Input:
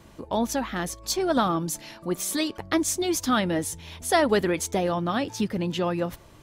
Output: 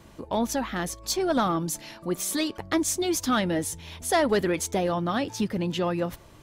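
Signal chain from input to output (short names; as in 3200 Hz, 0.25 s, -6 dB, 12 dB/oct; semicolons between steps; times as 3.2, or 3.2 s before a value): soft clip -13.5 dBFS, distortion -21 dB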